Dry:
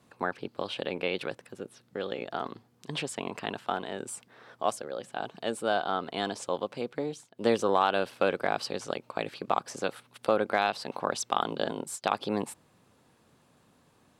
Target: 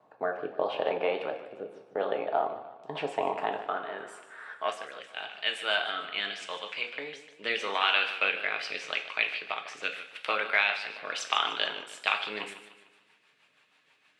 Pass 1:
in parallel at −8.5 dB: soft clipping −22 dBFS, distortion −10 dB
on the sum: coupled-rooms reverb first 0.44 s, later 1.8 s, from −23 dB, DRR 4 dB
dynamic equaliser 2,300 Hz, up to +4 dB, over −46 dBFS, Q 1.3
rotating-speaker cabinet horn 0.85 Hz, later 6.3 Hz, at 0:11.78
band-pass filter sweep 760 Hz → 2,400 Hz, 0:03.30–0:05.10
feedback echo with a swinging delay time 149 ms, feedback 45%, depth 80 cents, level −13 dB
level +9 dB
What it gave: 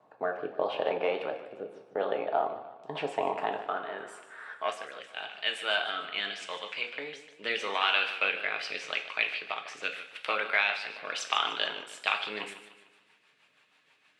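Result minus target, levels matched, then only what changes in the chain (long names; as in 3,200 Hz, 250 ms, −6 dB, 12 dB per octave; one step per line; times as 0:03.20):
soft clipping: distortion +14 dB
change: soft clipping −10.5 dBFS, distortion −24 dB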